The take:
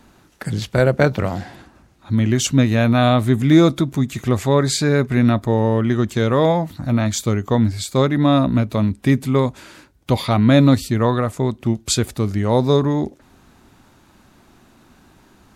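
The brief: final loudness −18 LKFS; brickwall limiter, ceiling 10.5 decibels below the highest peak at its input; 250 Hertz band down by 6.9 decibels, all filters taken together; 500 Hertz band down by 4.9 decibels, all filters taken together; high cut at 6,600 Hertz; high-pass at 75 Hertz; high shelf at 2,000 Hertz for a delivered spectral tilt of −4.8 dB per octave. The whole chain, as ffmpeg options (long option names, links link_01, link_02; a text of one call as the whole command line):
ffmpeg -i in.wav -af "highpass=75,lowpass=6600,equalizer=frequency=250:width_type=o:gain=-7.5,equalizer=frequency=500:width_type=o:gain=-4.5,highshelf=frequency=2000:gain=7.5,volume=5dB,alimiter=limit=-6.5dB:level=0:latency=1" out.wav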